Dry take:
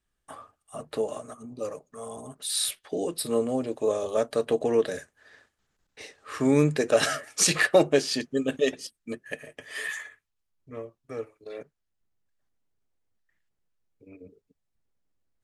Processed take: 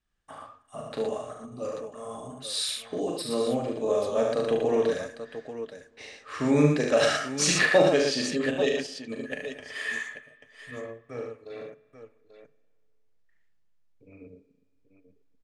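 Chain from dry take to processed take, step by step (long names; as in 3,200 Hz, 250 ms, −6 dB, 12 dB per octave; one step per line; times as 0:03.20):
low-pass filter 6,500 Hz 12 dB per octave
parametric band 370 Hz −4 dB 0.44 octaves
multi-tap delay 40/72/116/837 ms −5/−5/−5/−10.5 dB
spring reverb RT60 1.9 s, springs 30/51 ms, chirp 70 ms, DRR 19 dB
level −1.5 dB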